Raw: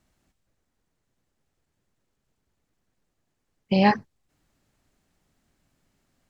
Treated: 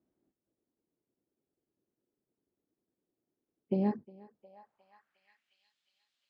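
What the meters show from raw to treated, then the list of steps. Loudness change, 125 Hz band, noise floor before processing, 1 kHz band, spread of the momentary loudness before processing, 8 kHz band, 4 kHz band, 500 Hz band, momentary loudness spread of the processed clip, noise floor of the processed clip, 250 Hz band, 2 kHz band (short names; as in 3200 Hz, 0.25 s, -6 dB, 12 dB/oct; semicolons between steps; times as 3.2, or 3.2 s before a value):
-11.0 dB, -9.5 dB, -78 dBFS, -19.5 dB, 8 LU, n/a, under -25 dB, -9.5 dB, 8 LU, under -85 dBFS, -9.0 dB, -28.0 dB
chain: spectral gain 3.76–4.54, 240–3200 Hz -6 dB; thinning echo 0.358 s, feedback 63%, high-pass 190 Hz, level -22 dB; band-pass sweep 340 Hz -> 3500 Hz, 4.15–5.64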